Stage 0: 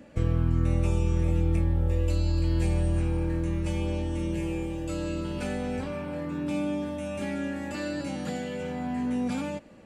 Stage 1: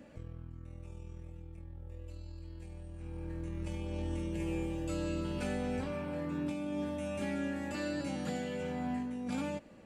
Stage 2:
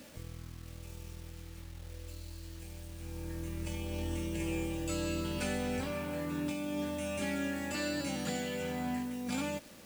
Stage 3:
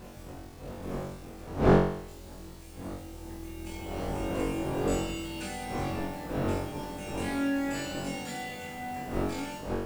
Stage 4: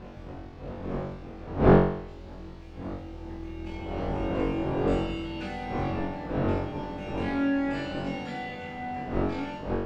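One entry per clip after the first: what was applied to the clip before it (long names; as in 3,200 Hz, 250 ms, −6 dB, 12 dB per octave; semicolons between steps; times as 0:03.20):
compressor whose output falls as the input rises −30 dBFS, ratio −0.5; level −7.5 dB
bit reduction 10 bits; high-shelf EQ 2,100 Hz +9 dB
wind on the microphone 480 Hz −34 dBFS; on a send: flutter between parallel walls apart 3.7 metres, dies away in 0.66 s; on the sum: level −4 dB
high-frequency loss of the air 230 metres; level +3.5 dB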